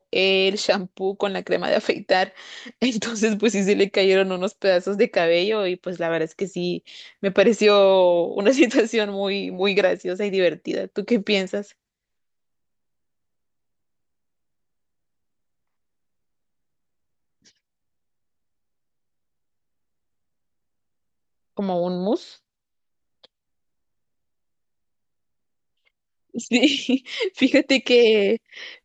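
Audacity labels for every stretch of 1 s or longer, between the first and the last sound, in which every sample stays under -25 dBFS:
11.610000	21.590000	silence
22.160000	26.360000	silence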